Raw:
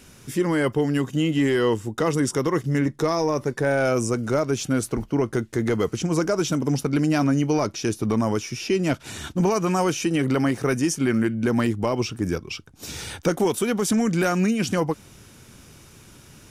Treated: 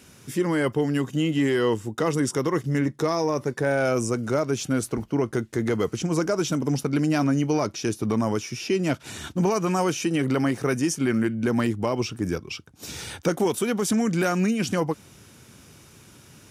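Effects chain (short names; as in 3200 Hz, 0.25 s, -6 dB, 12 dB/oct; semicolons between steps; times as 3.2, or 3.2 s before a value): HPF 71 Hz; gain -1.5 dB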